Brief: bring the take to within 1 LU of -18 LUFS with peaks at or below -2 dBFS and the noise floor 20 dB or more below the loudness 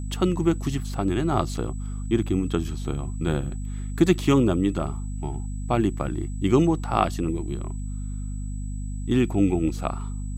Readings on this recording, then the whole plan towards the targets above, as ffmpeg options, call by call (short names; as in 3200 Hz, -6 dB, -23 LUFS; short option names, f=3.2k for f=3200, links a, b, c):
hum 50 Hz; harmonics up to 250 Hz; hum level -28 dBFS; steady tone 7900 Hz; tone level -49 dBFS; loudness -25.5 LUFS; peak -5.0 dBFS; loudness target -18.0 LUFS
-> -af "bandreject=f=50:t=h:w=6,bandreject=f=100:t=h:w=6,bandreject=f=150:t=h:w=6,bandreject=f=200:t=h:w=6,bandreject=f=250:t=h:w=6"
-af "bandreject=f=7.9k:w=30"
-af "volume=7.5dB,alimiter=limit=-2dB:level=0:latency=1"